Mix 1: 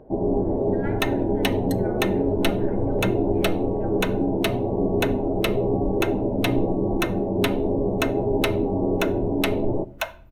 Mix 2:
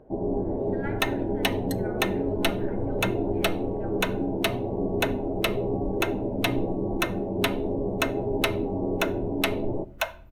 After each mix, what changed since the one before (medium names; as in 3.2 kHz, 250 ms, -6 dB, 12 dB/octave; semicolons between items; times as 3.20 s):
first sound -5.0 dB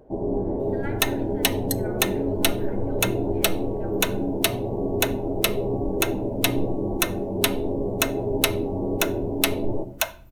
first sound: send +9.0 dB; master: add tone controls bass 0 dB, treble +13 dB